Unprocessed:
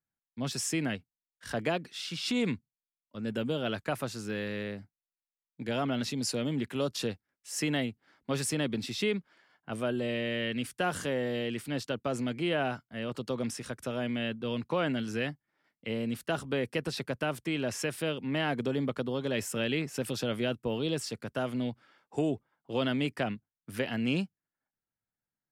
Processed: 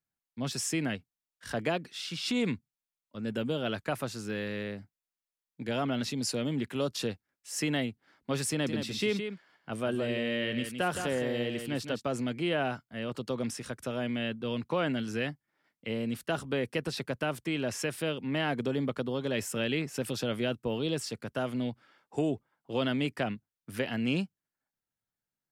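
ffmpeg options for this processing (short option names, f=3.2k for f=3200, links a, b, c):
-filter_complex "[0:a]asettb=1/sr,asplit=3[a][b][c];[a]atrim=end=8.504[d];[b]atrim=start=8.5:end=12.03,asetpts=PTS-STARTPTS,afade=t=in:d=0.004:c=qsin,afade=t=out:st=3.526:d=0.004:c=qsin,aecho=1:1:166:0.422,atrim=end_sample=155673[e];[c]atrim=start=12.026[f];[d][e]acrossfade=d=0.004:c1=hsin:c2=qsin[g];[g][f]acrossfade=d=0.004:c1=qsin:c2=hsin"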